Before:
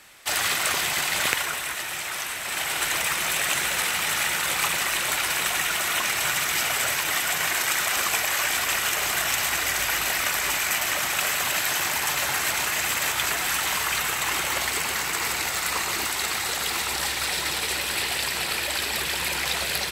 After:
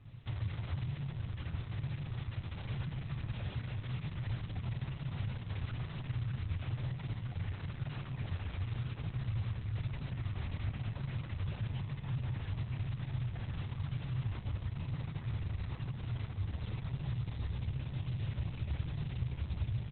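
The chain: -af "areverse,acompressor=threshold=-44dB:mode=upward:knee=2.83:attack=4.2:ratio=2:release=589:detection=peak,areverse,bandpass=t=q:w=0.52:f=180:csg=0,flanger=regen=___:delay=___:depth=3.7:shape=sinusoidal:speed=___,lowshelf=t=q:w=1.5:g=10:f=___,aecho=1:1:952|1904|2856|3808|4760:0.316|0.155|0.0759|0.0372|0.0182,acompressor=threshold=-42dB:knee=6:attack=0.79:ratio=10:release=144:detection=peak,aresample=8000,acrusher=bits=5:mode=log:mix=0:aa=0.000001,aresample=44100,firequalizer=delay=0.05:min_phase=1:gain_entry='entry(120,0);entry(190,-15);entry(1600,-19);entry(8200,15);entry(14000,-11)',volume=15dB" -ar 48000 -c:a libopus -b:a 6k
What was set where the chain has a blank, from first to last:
8, 7, 1, 190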